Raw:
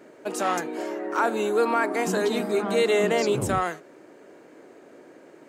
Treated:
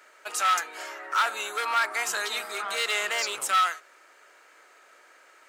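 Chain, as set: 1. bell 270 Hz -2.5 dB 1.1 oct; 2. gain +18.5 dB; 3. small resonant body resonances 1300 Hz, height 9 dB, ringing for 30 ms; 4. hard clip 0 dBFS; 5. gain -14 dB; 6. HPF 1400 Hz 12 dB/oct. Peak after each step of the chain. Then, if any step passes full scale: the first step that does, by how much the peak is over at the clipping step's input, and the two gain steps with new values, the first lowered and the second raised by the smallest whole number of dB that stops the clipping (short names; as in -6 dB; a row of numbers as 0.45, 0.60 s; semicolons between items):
-12.0, +6.5, +9.0, 0.0, -14.0, -12.0 dBFS; step 2, 9.0 dB; step 2 +9.5 dB, step 5 -5 dB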